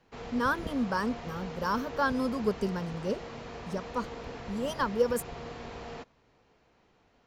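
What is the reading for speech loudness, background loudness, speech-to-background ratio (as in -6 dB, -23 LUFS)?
-32.0 LUFS, -42.0 LUFS, 10.0 dB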